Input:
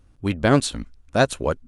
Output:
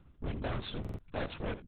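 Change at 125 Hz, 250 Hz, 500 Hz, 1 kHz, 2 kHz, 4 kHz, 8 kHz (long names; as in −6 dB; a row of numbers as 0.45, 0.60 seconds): −14.5 dB, −18.0 dB, −18.5 dB, −18.0 dB, −18.0 dB, −14.5 dB, below −40 dB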